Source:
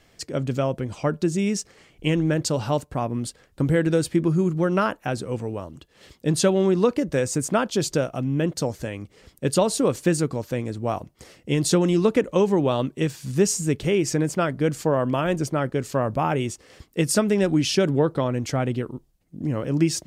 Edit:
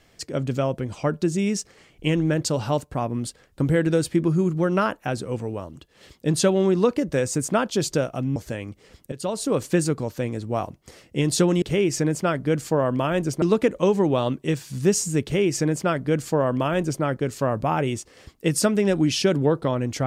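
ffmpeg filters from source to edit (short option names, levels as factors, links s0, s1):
-filter_complex "[0:a]asplit=5[s0][s1][s2][s3][s4];[s0]atrim=end=8.362[s5];[s1]atrim=start=8.688:end=9.45,asetpts=PTS-STARTPTS,afade=t=out:st=0.758:d=0.004:c=hsin:silence=0.16788[s6];[s2]atrim=start=9.45:end=11.952,asetpts=PTS-STARTPTS,afade=t=in:d=0.52:silence=0.16788[s7];[s3]atrim=start=13.758:end=15.562[s8];[s4]atrim=start=11.948[s9];[s6][s7]concat=n=2:v=0:a=1[s10];[s5][s10]acrossfade=d=0.004:c1=hsin:c2=hsin[s11];[s11][s8]acrossfade=d=0.004:c1=hsin:c2=hsin[s12];[s12][s9]acrossfade=d=0.004:c1=hsin:c2=hsin"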